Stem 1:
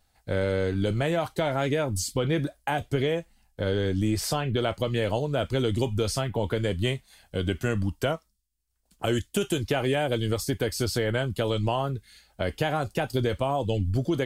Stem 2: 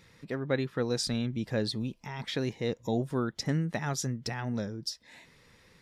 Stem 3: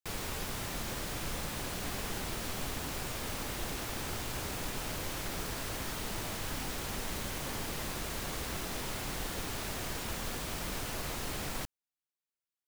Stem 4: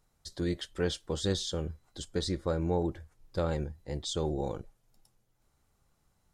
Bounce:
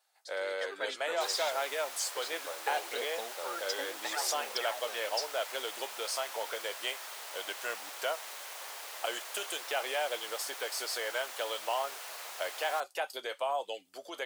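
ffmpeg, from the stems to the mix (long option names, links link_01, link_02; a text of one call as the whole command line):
ffmpeg -i stem1.wav -i stem2.wav -i stem3.wav -i stem4.wav -filter_complex "[0:a]volume=-3.5dB[link_01];[1:a]aphaser=in_gain=1:out_gain=1:delay=3.6:decay=0.68:speed=0.72:type=sinusoidal,adelay=300,volume=-3.5dB,asplit=3[link_02][link_03][link_04];[link_02]atrim=end=1.49,asetpts=PTS-STARTPTS,afade=type=out:start_time=1.486:duration=0.004:curve=hsin[link_05];[link_03]atrim=start=1.49:end=2.66,asetpts=PTS-STARTPTS,volume=0[link_06];[link_04]atrim=start=2.66,asetpts=PTS-STARTPTS,afade=type=in:duration=0.004:curve=hsin[link_07];[link_05][link_06][link_07]concat=n=3:v=0:a=1[link_08];[2:a]adelay=1150,volume=-3.5dB[link_09];[3:a]volume=-6dB[link_10];[link_01][link_08][link_09][link_10]amix=inputs=4:normalize=0,highpass=frequency=590:width=0.5412,highpass=frequency=590:width=1.3066" out.wav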